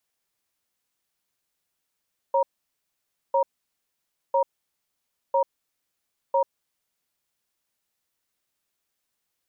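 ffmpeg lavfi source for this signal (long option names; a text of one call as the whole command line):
ffmpeg -f lavfi -i "aevalsrc='0.0944*(sin(2*PI*547*t)+sin(2*PI*942*t))*clip(min(mod(t,1),0.09-mod(t,1))/0.005,0,1)':duration=4.13:sample_rate=44100" out.wav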